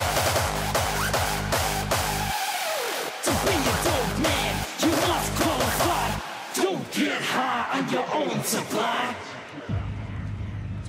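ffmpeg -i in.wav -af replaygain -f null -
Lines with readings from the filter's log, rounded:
track_gain = +6.0 dB
track_peak = 0.213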